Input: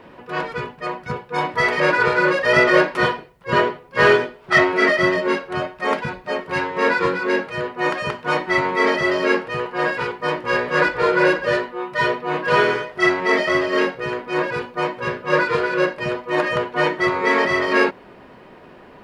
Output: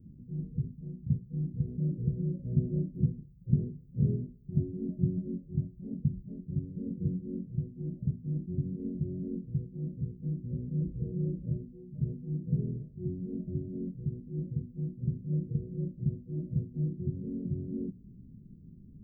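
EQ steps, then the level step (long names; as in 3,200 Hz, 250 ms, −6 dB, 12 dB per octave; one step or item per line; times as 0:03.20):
inverse Chebyshev band-stop filter 1,000–6,100 Hz, stop band 80 dB
bass and treble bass +4 dB, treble −7 dB
0.0 dB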